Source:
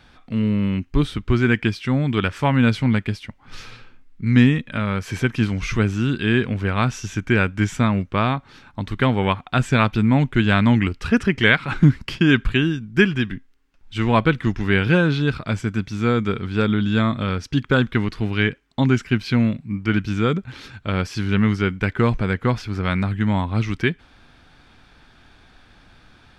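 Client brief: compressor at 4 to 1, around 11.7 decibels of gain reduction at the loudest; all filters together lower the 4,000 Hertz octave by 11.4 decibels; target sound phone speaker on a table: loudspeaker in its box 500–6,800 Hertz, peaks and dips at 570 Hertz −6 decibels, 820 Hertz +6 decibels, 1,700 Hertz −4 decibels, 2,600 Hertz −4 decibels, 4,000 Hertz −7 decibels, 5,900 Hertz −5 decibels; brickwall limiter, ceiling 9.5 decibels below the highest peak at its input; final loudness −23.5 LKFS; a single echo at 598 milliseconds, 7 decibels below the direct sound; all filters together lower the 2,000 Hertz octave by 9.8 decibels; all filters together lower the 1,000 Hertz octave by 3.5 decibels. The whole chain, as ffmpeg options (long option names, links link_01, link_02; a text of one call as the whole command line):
ffmpeg -i in.wav -af "equalizer=frequency=1000:width_type=o:gain=-4,equalizer=frequency=2000:width_type=o:gain=-6,equalizer=frequency=4000:width_type=o:gain=-8,acompressor=threshold=-23dB:ratio=4,alimiter=limit=-21.5dB:level=0:latency=1,highpass=frequency=500:width=0.5412,highpass=frequency=500:width=1.3066,equalizer=frequency=570:width_type=q:width=4:gain=-6,equalizer=frequency=820:width_type=q:width=4:gain=6,equalizer=frequency=1700:width_type=q:width=4:gain=-4,equalizer=frequency=2600:width_type=q:width=4:gain=-4,equalizer=frequency=4000:width_type=q:width=4:gain=-7,equalizer=frequency=5900:width_type=q:width=4:gain=-5,lowpass=frequency=6800:width=0.5412,lowpass=frequency=6800:width=1.3066,aecho=1:1:598:0.447,volume=20.5dB" out.wav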